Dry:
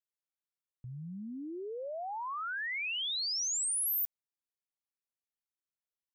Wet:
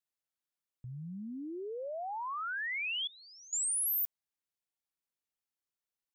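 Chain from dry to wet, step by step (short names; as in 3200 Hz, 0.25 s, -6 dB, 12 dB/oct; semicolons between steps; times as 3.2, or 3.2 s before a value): 3.07–3.53 passive tone stack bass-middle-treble 10-0-1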